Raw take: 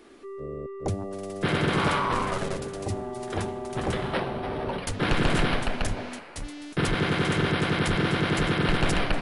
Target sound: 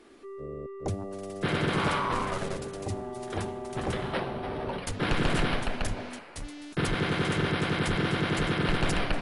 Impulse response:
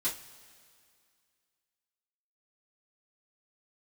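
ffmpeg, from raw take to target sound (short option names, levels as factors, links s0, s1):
-af "volume=0.708" -ar 48000 -c:a ac3 -b:a 64k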